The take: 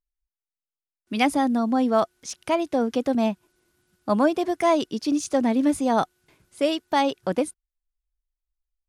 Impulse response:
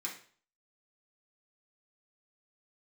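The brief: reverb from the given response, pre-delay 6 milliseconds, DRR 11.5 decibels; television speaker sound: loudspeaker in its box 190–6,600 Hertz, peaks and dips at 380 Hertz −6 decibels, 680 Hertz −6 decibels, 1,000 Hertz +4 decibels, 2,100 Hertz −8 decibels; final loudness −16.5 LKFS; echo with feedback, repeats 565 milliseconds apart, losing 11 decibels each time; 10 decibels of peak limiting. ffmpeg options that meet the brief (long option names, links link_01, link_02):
-filter_complex "[0:a]alimiter=limit=-18dB:level=0:latency=1,aecho=1:1:565|1130|1695:0.282|0.0789|0.0221,asplit=2[link_01][link_02];[1:a]atrim=start_sample=2205,adelay=6[link_03];[link_02][link_03]afir=irnorm=-1:irlink=0,volume=-12.5dB[link_04];[link_01][link_04]amix=inputs=2:normalize=0,highpass=frequency=190:width=0.5412,highpass=frequency=190:width=1.3066,equalizer=frequency=380:width_type=q:width=4:gain=-6,equalizer=frequency=680:width_type=q:width=4:gain=-6,equalizer=frequency=1000:width_type=q:width=4:gain=4,equalizer=frequency=2100:width_type=q:width=4:gain=-8,lowpass=frequency=6600:width=0.5412,lowpass=frequency=6600:width=1.3066,volume=13dB"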